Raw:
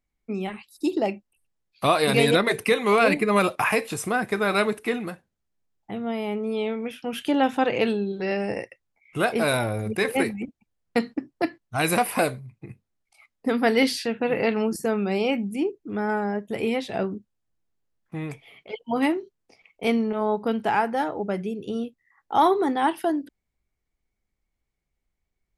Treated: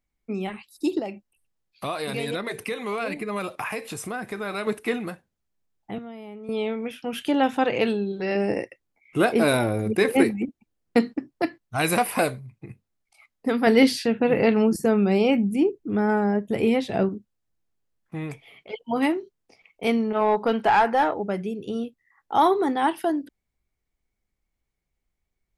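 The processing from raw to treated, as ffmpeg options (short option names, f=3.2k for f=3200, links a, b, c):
-filter_complex "[0:a]asettb=1/sr,asplit=3[a][b][c];[a]atrim=end=0.994[d];[b]atrim=start=0.99:end=4.67,asetpts=PTS-STARTPTS,afade=t=in:d=0.004:c=qsin,afade=t=out:st=3.676:d=0.004:c=qsin,acompressor=threshold=-33dB:ratio=2:attack=3.2:release=140:knee=1:detection=peak[e];[c]atrim=start=4.666[f];[d][e]acrossfade=d=0.004:c1=hsin:c2=qsin[g];[g][f]acrossfade=d=0.004:c1=qsin:c2=hsin,asettb=1/sr,asplit=3[h][i][j];[h]atrim=end=5.984[k];[i]atrim=start=5.98:end=6.49,asetpts=PTS-STARTPTS,afade=t=in:d=0.004:c=qsin,afade=t=out:st=0.506:d=0.004:c=qsin,acrossover=split=200|990[l][m][n];[l]acompressor=threshold=-49dB:ratio=4[o];[m]acompressor=threshold=-42dB:ratio=4[p];[n]acompressor=threshold=-54dB:ratio=4[q];[o][p][q]amix=inputs=3:normalize=0[r];[j]atrim=start=6.486[s];[k][r]acrossfade=d=0.004:c1=hsin:c2=qsin[t];[t][s]acrossfade=d=0.004:c1=qsin:c2=hsin,asettb=1/sr,asplit=3[u][v][w];[u]atrim=end=8.354[x];[v]atrim=start=8.35:end=11.13,asetpts=PTS-STARTPTS,afade=t=in:d=0.004:c=qsin,afade=t=out:st=2.776:d=0.004:c=qsin,equalizer=f=310:t=o:w=1.1:g=7.5[y];[w]atrim=start=11.126[z];[x][y]acrossfade=d=0.004:c1=hsin:c2=qsin[aa];[aa][z]acrossfade=d=0.004:c1=qsin:c2=hsin,asettb=1/sr,asplit=3[ab][ac][ad];[ab]atrim=end=13.674[ae];[ac]atrim=start=13.67:end=17.09,asetpts=PTS-STARTPTS,afade=t=in:d=0.004:c=qsin,afade=t=out:st=3.416:d=0.004:c=qsin,lowshelf=f=460:g=7[af];[ad]atrim=start=17.086[ag];[ae][af]acrossfade=d=0.004:c1=hsin:c2=qsin[ah];[ah][ag]acrossfade=d=0.004:c1=qsin:c2=hsin,asplit=3[ai][aj][ak];[ai]afade=t=out:st=20.14:d=0.02[al];[aj]asplit=2[am][an];[an]highpass=f=720:p=1,volume=15dB,asoftclip=type=tanh:threshold=-9dB[ao];[am][ao]amix=inputs=2:normalize=0,lowpass=f=2.8k:p=1,volume=-6dB,afade=t=in:st=20.14:d=0.02,afade=t=out:st=21.13:d=0.02[ap];[ak]afade=t=in:st=21.13:d=0.02[aq];[al][ap][aq]amix=inputs=3:normalize=0"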